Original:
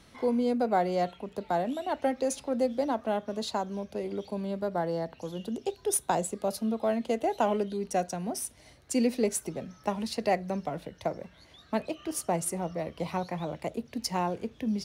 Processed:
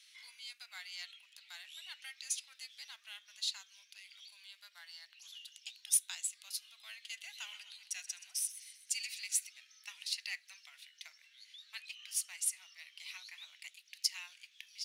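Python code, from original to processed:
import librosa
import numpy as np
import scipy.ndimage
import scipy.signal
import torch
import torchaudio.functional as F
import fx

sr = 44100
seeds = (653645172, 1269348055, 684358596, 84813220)

y = scipy.signal.sosfilt(scipy.signal.cheby2(4, 80, 400.0, 'highpass', fs=sr, output='sos'), x)
y = fx.high_shelf(y, sr, hz=8900.0, db=-5.5)
y = fx.echo_warbled(y, sr, ms=128, feedback_pct=54, rate_hz=2.8, cents=66, wet_db=-14, at=(6.91, 9.46))
y = y * librosa.db_to_amplitude(2.5)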